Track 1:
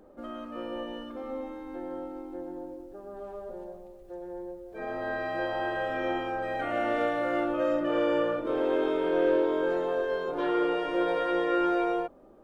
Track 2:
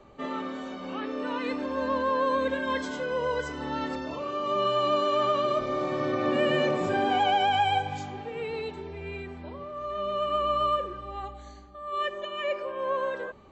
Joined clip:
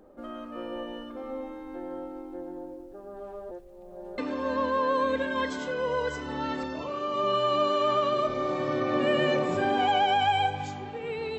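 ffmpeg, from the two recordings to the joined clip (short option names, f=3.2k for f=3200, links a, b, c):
-filter_complex "[0:a]apad=whole_dur=11.38,atrim=end=11.38,asplit=2[a][b];[a]atrim=end=3.512[c];[b]atrim=start=3.508:end=4.182,asetpts=PTS-STARTPTS,areverse[d];[1:a]atrim=start=1.498:end=8.7[e];[c][d]acrossfade=d=0.004:c1=hsin:c2=hsin[f];[f][e]acrossfade=d=0.004:c1=hsin:c2=hsin"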